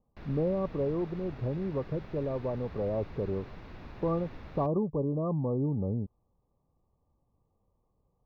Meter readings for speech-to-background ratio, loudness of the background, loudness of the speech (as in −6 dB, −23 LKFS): 16.0 dB, −48.5 LKFS, −32.5 LKFS